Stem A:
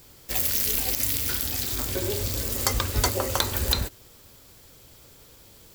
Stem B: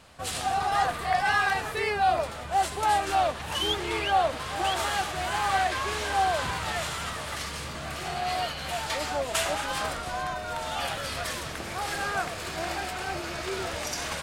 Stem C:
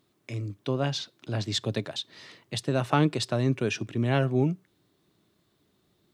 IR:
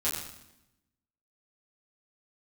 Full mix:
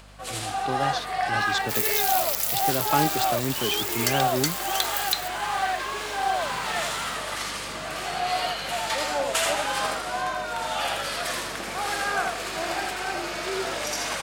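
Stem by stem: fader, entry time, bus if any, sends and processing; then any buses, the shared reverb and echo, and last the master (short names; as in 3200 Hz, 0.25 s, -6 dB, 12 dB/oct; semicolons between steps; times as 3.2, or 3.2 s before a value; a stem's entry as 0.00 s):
-0.5 dB, 1.40 s, no send, no echo send, steep high-pass 1500 Hz
+2.5 dB, 0.00 s, no send, echo send -4 dB, HPF 150 Hz 12 dB/oct; auto duck -10 dB, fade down 0.50 s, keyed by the third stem
-0.5 dB, 0.00 s, no send, no echo send, dry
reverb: off
echo: echo 81 ms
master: low shelf 120 Hz -12 dB; upward compressor, threshold -51 dBFS; hum 50 Hz, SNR 23 dB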